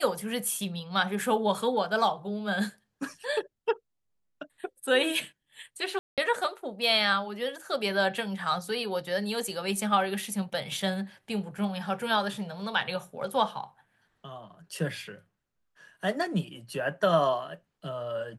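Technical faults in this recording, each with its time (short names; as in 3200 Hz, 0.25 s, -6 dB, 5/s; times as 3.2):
5.99–6.18 gap 0.187 s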